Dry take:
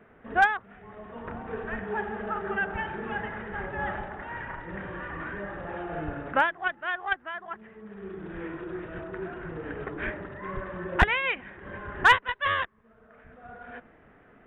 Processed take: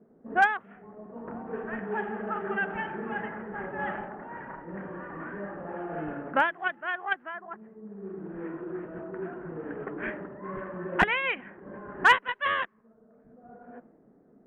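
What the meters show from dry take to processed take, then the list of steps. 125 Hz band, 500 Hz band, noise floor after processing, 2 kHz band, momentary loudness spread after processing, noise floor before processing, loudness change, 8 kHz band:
-4.5 dB, 0.0 dB, -60 dBFS, -1.0 dB, 18 LU, -57 dBFS, -1.0 dB, n/a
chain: notch 3600 Hz, Q 9.1; low-pass opened by the level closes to 430 Hz, open at -23 dBFS; resonant low shelf 130 Hz -13 dB, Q 1.5; gain -1 dB

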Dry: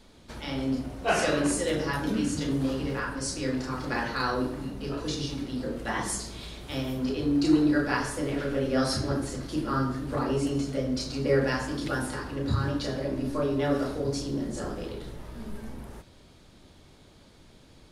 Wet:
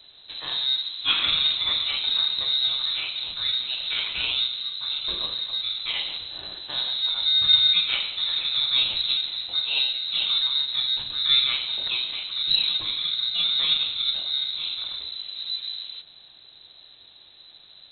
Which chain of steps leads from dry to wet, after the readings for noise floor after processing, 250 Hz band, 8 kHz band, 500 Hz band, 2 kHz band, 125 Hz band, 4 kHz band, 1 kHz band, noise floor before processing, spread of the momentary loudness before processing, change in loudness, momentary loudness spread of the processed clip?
-51 dBFS, under -25 dB, under -40 dB, under -20 dB, +0.5 dB, under -15 dB, +20.5 dB, -8.5 dB, -55 dBFS, 11 LU, +6.5 dB, 10 LU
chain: in parallel at -6 dB: sample-and-hold 20×; on the sum: inverted band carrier 4000 Hz

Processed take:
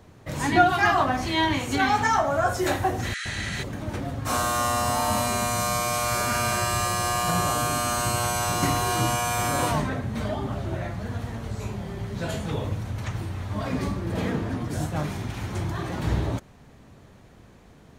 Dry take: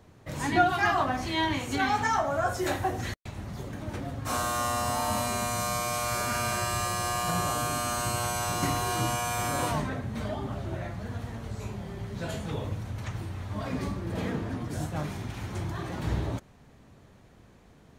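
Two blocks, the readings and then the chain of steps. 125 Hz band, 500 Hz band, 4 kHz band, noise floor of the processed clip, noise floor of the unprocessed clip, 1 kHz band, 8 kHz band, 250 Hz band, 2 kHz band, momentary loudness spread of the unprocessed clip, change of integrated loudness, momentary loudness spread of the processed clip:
+4.5 dB, +4.5 dB, +4.5 dB, -51 dBFS, -56 dBFS, +4.5 dB, +4.5 dB, +4.5 dB, +4.5 dB, 11 LU, +4.5 dB, 10 LU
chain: spectral repair 3.12–3.6, 1200–11000 Hz before; gain +4.5 dB

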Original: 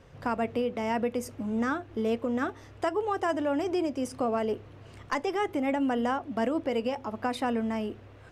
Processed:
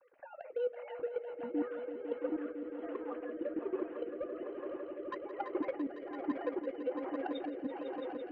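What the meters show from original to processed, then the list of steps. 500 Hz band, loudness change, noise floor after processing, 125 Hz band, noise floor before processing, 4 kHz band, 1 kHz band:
-7.5 dB, -9.5 dB, -50 dBFS, under -20 dB, -50 dBFS, under -15 dB, -14.0 dB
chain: sine-wave speech; compressor 12:1, threshold -30 dBFS, peak gain reduction 13 dB; air absorption 320 m; notch comb 220 Hz; level quantiser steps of 17 dB; soft clip -29.5 dBFS, distortion -21 dB; on a send: swelling echo 0.168 s, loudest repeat 5, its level -10.5 dB; on the sum: flange 0.4 Hz, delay 3.4 ms, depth 1.1 ms, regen +82%; rotary speaker horn 7.5 Hz, later 1.2 Hz, at 1.27; gain +9 dB

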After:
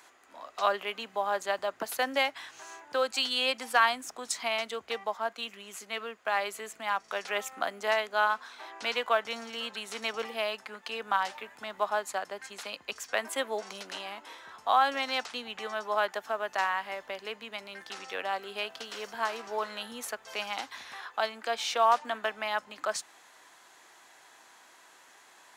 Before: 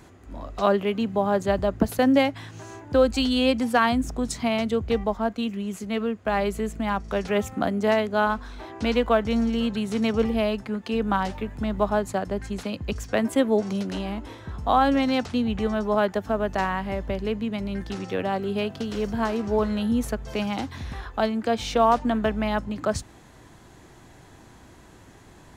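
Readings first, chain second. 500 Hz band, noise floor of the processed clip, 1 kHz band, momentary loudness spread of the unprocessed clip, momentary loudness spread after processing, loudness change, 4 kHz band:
-9.5 dB, -58 dBFS, -3.5 dB, 10 LU, 13 LU, -6.5 dB, 0.0 dB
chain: HPF 920 Hz 12 dB/oct

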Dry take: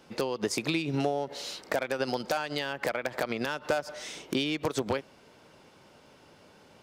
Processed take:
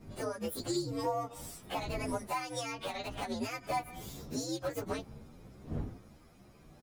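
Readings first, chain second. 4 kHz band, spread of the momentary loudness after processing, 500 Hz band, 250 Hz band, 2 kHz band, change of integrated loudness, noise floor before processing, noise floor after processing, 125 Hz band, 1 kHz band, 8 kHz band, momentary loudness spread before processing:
-7.5 dB, 11 LU, -7.0 dB, -5.5 dB, -10.0 dB, -6.5 dB, -57 dBFS, -59 dBFS, -3.0 dB, -2.5 dB, -2.5 dB, 4 LU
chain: inharmonic rescaling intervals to 125%; wind noise 230 Hz -45 dBFS; endless flanger 10.3 ms +2.1 Hz

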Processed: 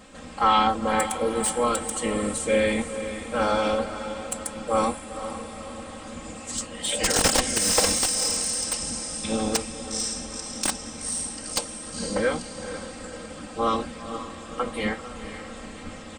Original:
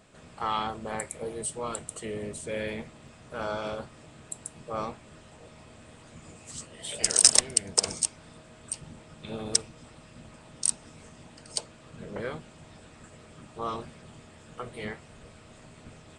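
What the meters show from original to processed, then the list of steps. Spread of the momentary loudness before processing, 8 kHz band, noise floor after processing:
21 LU, +2.0 dB, -40 dBFS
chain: comb 3.8 ms, depth 95%; on a send: diffused feedback echo 0.483 s, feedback 51%, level -10.5 dB; on the sum: slew limiter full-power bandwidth 280 Hz; gain +7.5 dB

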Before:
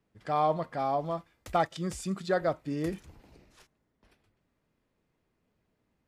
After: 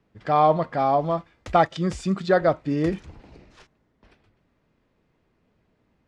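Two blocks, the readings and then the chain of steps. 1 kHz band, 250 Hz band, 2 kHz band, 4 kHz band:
+8.5 dB, +9.0 dB, +8.0 dB, +6.0 dB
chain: air absorption 100 m; gain +9 dB

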